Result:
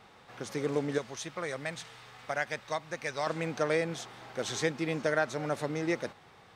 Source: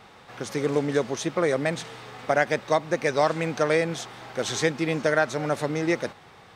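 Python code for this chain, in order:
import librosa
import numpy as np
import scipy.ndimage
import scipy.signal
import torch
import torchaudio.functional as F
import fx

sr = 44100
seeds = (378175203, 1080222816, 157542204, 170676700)

y = fx.peak_eq(x, sr, hz=320.0, db=-10.0, octaves=2.4, at=(0.98, 3.27))
y = y * librosa.db_to_amplitude(-6.5)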